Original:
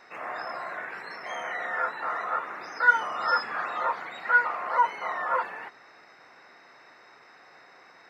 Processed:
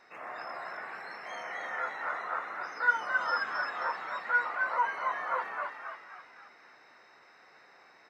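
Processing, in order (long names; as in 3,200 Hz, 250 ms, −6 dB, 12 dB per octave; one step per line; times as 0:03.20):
echo with shifted repeats 266 ms, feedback 48%, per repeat +73 Hz, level −4.5 dB
level −6.5 dB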